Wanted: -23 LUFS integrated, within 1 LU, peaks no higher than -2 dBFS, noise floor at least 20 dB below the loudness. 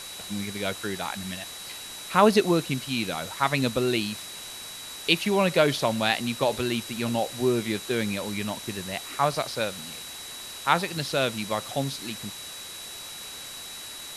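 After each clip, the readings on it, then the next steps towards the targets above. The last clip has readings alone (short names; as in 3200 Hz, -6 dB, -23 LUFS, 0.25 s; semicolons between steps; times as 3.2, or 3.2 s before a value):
steady tone 3900 Hz; tone level -41 dBFS; noise floor -40 dBFS; noise floor target -48 dBFS; loudness -27.5 LUFS; peak -3.5 dBFS; loudness target -23.0 LUFS
-> notch 3900 Hz, Q 30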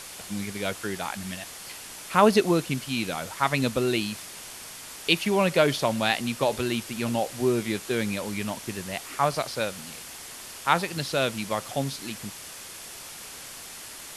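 steady tone none; noise floor -42 dBFS; noise floor target -47 dBFS
-> denoiser 6 dB, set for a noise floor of -42 dBFS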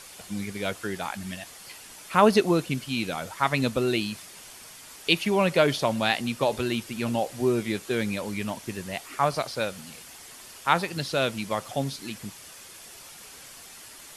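noise floor -46 dBFS; noise floor target -47 dBFS
-> denoiser 6 dB, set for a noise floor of -46 dBFS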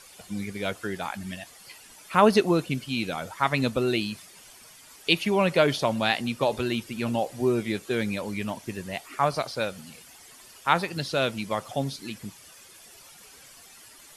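noise floor -51 dBFS; loudness -26.5 LUFS; peak -4.0 dBFS; loudness target -23.0 LUFS
-> gain +3.5 dB; limiter -2 dBFS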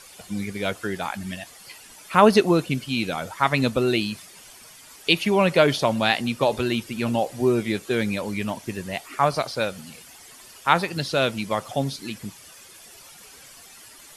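loudness -23.5 LUFS; peak -2.0 dBFS; noise floor -47 dBFS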